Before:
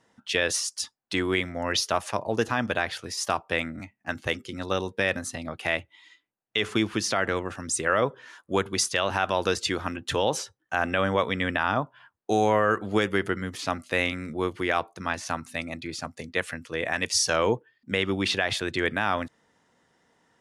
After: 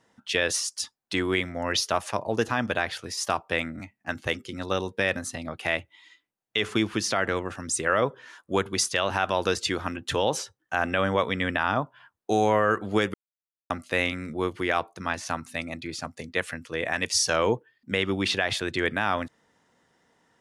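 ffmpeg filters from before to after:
-filter_complex "[0:a]asplit=3[a][b][c];[a]atrim=end=13.14,asetpts=PTS-STARTPTS,afade=t=out:st=13.136:d=0.004:c=hsin[d];[b]atrim=start=13.14:end=13.7,asetpts=PTS-STARTPTS,volume=0[e];[c]atrim=start=13.7,asetpts=PTS-STARTPTS,afade=t=in:d=0.004:c=hsin[f];[d][e][f]concat=n=3:v=0:a=1"

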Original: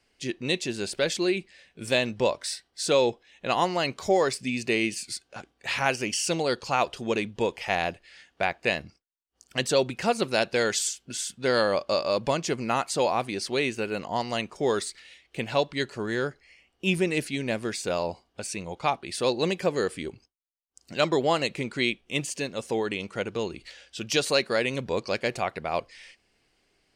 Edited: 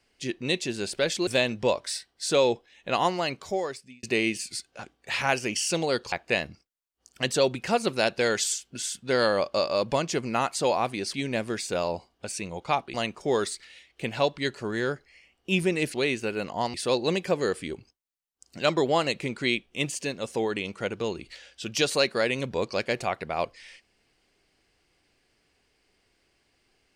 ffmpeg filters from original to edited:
-filter_complex "[0:a]asplit=8[a][b][c][d][e][f][g][h];[a]atrim=end=1.272[i];[b]atrim=start=1.838:end=4.6,asetpts=PTS-STARTPTS,afade=t=out:st=1.792:d=0.97[j];[c]atrim=start=4.6:end=6.692,asetpts=PTS-STARTPTS,afade=t=in:d=0.004:c=hsin[k];[d]atrim=start=8.468:end=13.492[l];[e]atrim=start=17.288:end=19.092[m];[f]atrim=start=14.288:end=17.292[n];[g]atrim=start=13.488:end=14.292[o];[h]atrim=start=19.088[p];[j][k]concat=n=2:v=0:a=1[q];[i][q]acrossfade=d=0.004:c1=hsin:c2=hsin[r];[r][l]acrossfade=d=0.004:c1=hsin:c2=hsin[s];[s][m]acrossfade=d=0.004:c1=hsin:c2=hsin[t];[t][n]acrossfade=d=0.004:c1=hsin:c2=hsin[u];[u][o]acrossfade=d=0.004:c1=hsin:c2=hsin[v];[v][p]acrossfade=d=0.004:c1=hsin:c2=hsin"

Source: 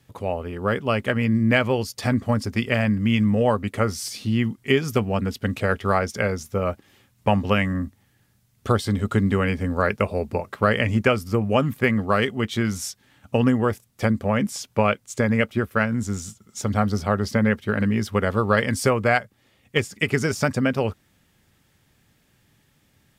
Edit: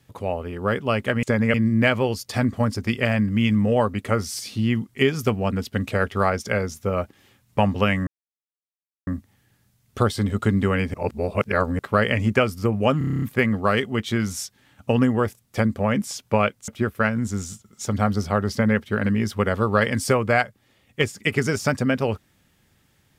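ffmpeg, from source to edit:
-filter_complex "[0:a]asplit=15[a][b][c][d][e][f][g][h][i][j][k][l][m][n][o];[a]atrim=end=1.232[p];[b]atrim=start=15.128:end=15.442[q];[c]atrim=start=1.228:end=7.76,asetpts=PTS-STARTPTS,afade=t=out:st=6.528:d=0.004:c=hsin,apad=pad_dur=1[r];[d]atrim=start=7.76:end=9.632,asetpts=PTS-STARTPTS,afade=t=in:d=0.004:c=hsin[s];[e]atrim=start=9.628:end=10.482,asetpts=PTS-STARTPTS,areverse[t];[f]atrim=start=10.478:end=11.702[u];[g]atrim=start=11.668:end=11.702[v];[h]atrim=start=11.668:end=11.702[w];[i]atrim=start=11.668:end=11.702[x];[j]atrim=start=11.668:end=11.702[y];[k]atrim=start=11.668:end=11.702[z];[l]atrim=start=11.668:end=11.702[aa];[m]atrim=start=11.668:end=11.702[ab];[n]atrim=start=11.668:end=15.132[ac];[o]atrim=start=15.438[ad];[p][q]acrossfade=d=0.004:c1=hsin:c2=hsin[ae];[r][s]concat=n=2:v=0:a=1[af];[ae][af]acrossfade=d=0.004:c1=hsin:c2=hsin[ag];[ag][t]acrossfade=d=0.004:c1=hsin:c2=hsin[ah];[ah][u]acrossfade=d=0.004:c1=hsin:c2=hsin[ai];[ai][v]acrossfade=d=0.004:c1=hsin:c2=hsin[aj];[aj][w]acrossfade=d=0.004:c1=hsin:c2=hsin[ak];[ak][x]acrossfade=d=0.004:c1=hsin:c2=hsin[al];[al][y]acrossfade=d=0.004:c1=hsin:c2=hsin[am];[am][z]acrossfade=d=0.004:c1=hsin:c2=hsin[an];[an][aa]acrossfade=d=0.004:c1=hsin:c2=hsin[ao];[ao][ab]acrossfade=d=0.004:c1=hsin:c2=hsin[ap];[ap][ac]acrossfade=d=0.004:c1=hsin:c2=hsin[aq];[aq][ad]acrossfade=d=0.004:c1=hsin:c2=hsin"

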